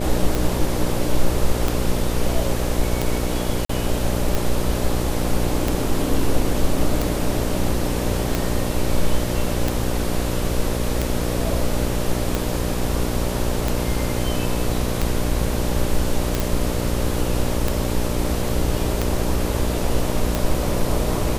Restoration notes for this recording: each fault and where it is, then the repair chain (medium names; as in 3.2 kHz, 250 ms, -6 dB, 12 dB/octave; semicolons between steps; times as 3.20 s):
buzz 60 Hz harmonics 10 -25 dBFS
tick 45 rpm
3.65–3.69 s: dropout 44 ms
16.40 s: pop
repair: de-click; de-hum 60 Hz, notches 10; interpolate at 3.65 s, 44 ms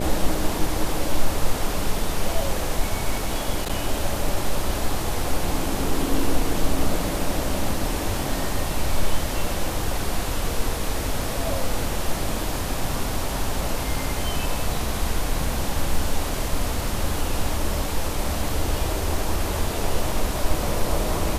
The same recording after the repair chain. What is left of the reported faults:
nothing left